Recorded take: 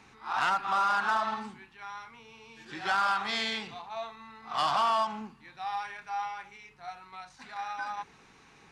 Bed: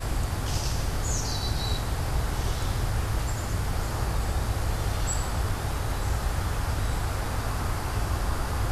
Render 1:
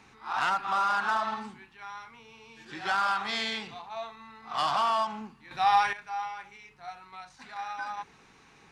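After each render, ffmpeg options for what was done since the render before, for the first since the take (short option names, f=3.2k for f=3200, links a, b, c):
-filter_complex "[0:a]asplit=3[a][b][c];[a]atrim=end=5.512[d];[b]atrim=start=5.508:end=5.932,asetpts=PTS-STARTPTS,volume=12dB[e];[c]atrim=start=5.928[f];[d][e]acrossfade=d=0.004:c1=hsin:c2=hsin[g];[g][f]acrossfade=d=0.004:c1=hsin:c2=hsin"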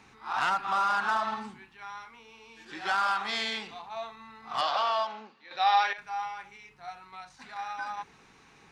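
-filter_complex "[0:a]asettb=1/sr,asplit=3[a][b][c];[a]atrim=end=2.044[d];[b]atrim=start=2.04:end=3.8,asetpts=PTS-STARTPTS,afade=t=in:d=0.004:c=qsin,afade=t=out:st=1.756:d=0.004:c=qsin,equalizer=f=130:w=1.7:g=-10.5[e];[c]atrim=start=3.796[f];[d][e]acrossfade=d=0.004:c1=hsin:c2=qsin[g];[g][f]acrossfade=d=0.004:c1=qsin:c2=hsin,asettb=1/sr,asplit=3[h][i][j];[h]atrim=end=4.614[k];[i]atrim=start=4.61:end=5.98,asetpts=PTS-STARTPTS,afade=t=in:d=0.004:c=qsin,afade=t=out:st=1.366:d=0.004:c=qsin,highpass=420,equalizer=f=540:t=q:w=4:g=10,equalizer=f=1k:t=q:w=4:g=-5,equalizer=f=3.9k:t=q:w=4:g=5,lowpass=f=5.7k:w=0.5412,lowpass=f=5.7k:w=1.3066[l];[j]atrim=start=5.976[m];[k][l]acrossfade=d=0.004:c1=hsin:c2=qsin[n];[n][m]acrossfade=d=0.004:c1=qsin:c2=hsin"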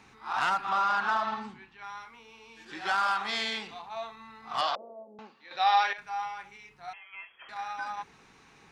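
-filter_complex "[0:a]asettb=1/sr,asplit=3[a][b][c];[a]atrim=end=0.694[d];[b]atrim=start=0.69:end=1.84,asetpts=PTS-STARTPTS,afade=t=in:d=0.004:c=qsin,afade=t=out:st=1.146:d=0.004:c=qsin,lowpass=5.7k[e];[c]atrim=start=1.836[f];[d][e]acrossfade=d=0.004:c1=hsin:c2=qsin[g];[g][f]acrossfade=d=0.004:c1=qsin:c2=hsin,asettb=1/sr,asplit=3[h][i][j];[h]atrim=end=4.754[k];[i]atrim=start=4.75:end=5.19,asetpts=PTS-STARTPTS,afade=t=in:d=0.004:c=qsin,afade=t=out:st=0.436:d=0.004:c=qsin,asuperpass=centerf=320:order=8:qfactor=0.92[l];[j]atrim=start=5.186[m];[k][l]acrossfade=d=0.004:c1=hsin:c2=qsin[n];[n][m]acrossfade=d=0.004:c1=qsin:c2=hsin,asettb=1/sr,asplit=3[o][p][q];[o]atrim=end=6.934[r];[p]atrim=start=6.93:end=7.49,asetpts=PTS-STARTPTS,afade=t=in:d=0.004:c=qsin,afade=t=out:st=0.556:d=0.004:c=qsin,lowpass=f=2.9k:t=q:w=0.5098,lowpass=f=2.9k:t=q:w=0.6013,lowpass=f=2.9k:t=q:w=0.9,lowpass=f=2.9k:t=q:w=2.563,afreqshift=-3400[s];[q]atrim=start=7.486[t];[r][s]acrossfade=d=0.004:c1=hsin:c2=qsin[u];[u][t]acrossfade=d=0.004:c1=qsin:c2=hsin"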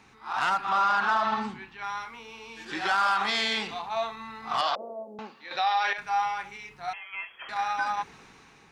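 -af "dynaudnorm=f=340:g=5:m=8dB,alimiter=limit=-17.5dB:level=0:latency=1:release=60"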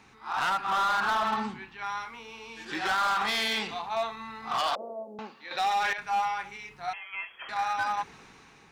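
-af "volume=23dB,asoftclip=hard,volume=-23dB"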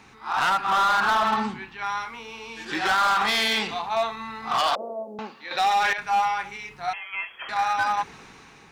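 -af "volume=5.5dB"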